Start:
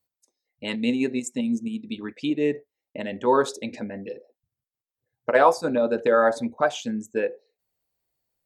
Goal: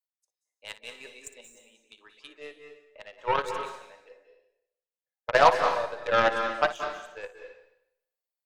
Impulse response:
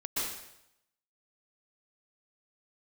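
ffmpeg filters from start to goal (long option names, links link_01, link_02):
-filter_complex "[0:a]highpass=frequency=550:width=0.5412,highpass=frequency=550:width=1.3066,aeval=exprs='0.501*(cos(1*acos(clip(val(0)/0.501,-1,1)))-cos(1*PI/2))+0.0141*(cos(4*acos(clip(val(0)/0.501,-1,1)))-cos(4*PI/2))+0.0562*(cos(7*acos(clip(val(0)/0.501,-1,1)))-cos(7*PI/2))+0.00398*(cos(8*acos(clip(val(0)/0.501,-1,1)))-cos(8*PI/2))':channel_layout=same,asplit=2[link_01][link_02];[1:a]atrim=start_sample=2205,adelay=58[link_03];[link_02][link_03]afir=irnorm=-1:irlink=0,volume=-11dB[link_04];[link_01][link_04]amix=inputs=2:normalize=0"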